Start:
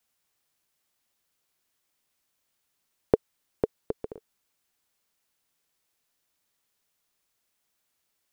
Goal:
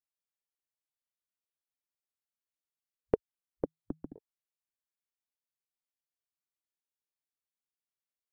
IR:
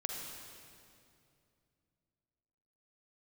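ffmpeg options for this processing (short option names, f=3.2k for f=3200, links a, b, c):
-filter_complex "[0:a]afwtdn=0.00501,asettb=1/sr,asplit=3[a][b][c];[a]atrim=end=3.644[d];[b]atrim=start=3.64:end=4.16,asetpts=PTS-STARTPTS,afade=t=in:d=0.004:c=qsin,afade=t=out:st=0.516:d=0.004:c=qsin,afreqshift=-160[e];[c]atrim=start=4.156[f];[d][e]acrossfade=d=0.004:c1=hsin:c2=qsin[g];[g][f]acrossfade=d=0.004:c1=qsin:c2=hsin,volume=-6.5dB"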